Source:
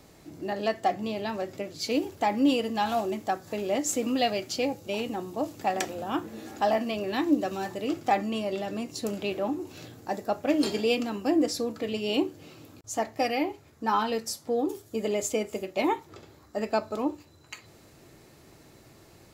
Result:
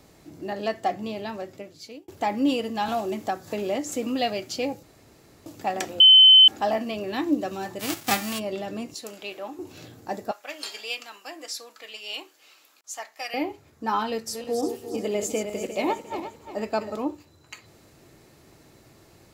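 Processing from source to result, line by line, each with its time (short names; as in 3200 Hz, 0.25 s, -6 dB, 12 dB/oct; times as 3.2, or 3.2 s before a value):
0.85–2.08 fade out equal-power
2.88–3.92 three-band squash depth 70%
4.83–5.46 room tone
6–6.48 bleep 3060 Hz -8.5 dBFS
7.79–8.38 spectral whitening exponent 0.3
8.94–9.59 HPF 1000 Hz 6 dB/oct
10.31–13.34 HPF 1200 Hz
14.09–16.96 regenerating reverse delay 0.176 s, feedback 58%, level -7 dB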